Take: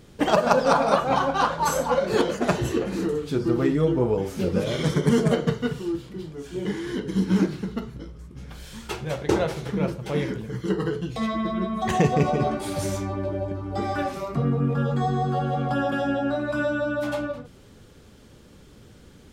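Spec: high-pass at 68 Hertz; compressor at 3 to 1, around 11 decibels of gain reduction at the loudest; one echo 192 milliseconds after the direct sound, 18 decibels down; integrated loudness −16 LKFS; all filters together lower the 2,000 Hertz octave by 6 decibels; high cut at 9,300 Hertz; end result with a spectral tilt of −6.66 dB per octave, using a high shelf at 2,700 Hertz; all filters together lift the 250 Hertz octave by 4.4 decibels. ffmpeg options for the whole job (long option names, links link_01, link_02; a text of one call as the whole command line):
ffmpeg -i in.wav -af "highpass=68,lowpass=9300,equalizer=frequency=250:width_type=o:gain=6,equalizer=frequency=2000:width_type=o:gain=-6,highshelf=frequency=2700:gain=-7.5,acompressor=threshold=-28dB:ratio=3,aecho=1:1:192:0.126,volume=14.5dB" out.wav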